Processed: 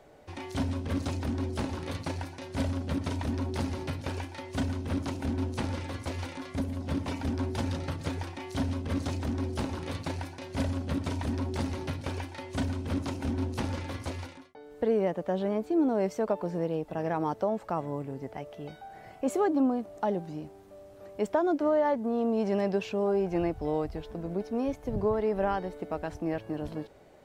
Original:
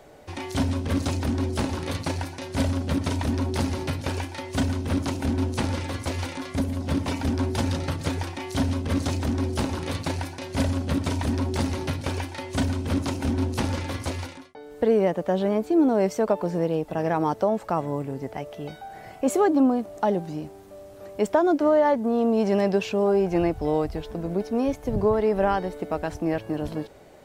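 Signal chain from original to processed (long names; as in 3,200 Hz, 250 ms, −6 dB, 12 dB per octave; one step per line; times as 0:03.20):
high-shelf EQ 5,000 Hz −5 dB
level −6 dB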